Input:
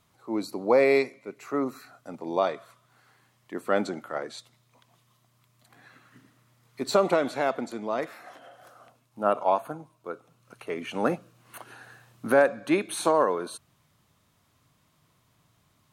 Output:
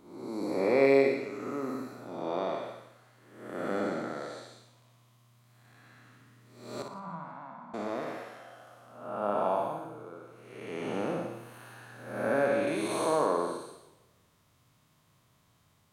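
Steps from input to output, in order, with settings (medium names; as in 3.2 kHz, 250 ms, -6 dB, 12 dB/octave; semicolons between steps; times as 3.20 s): spectral blur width 349 ms; 6.82–7.74 s: two resonant band-passes 420 Hz, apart 2.5 oct; flutter echo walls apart 10 m, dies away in 0.52 s; modulated delay 164 ms, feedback 46%, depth 209 cents, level -22 dB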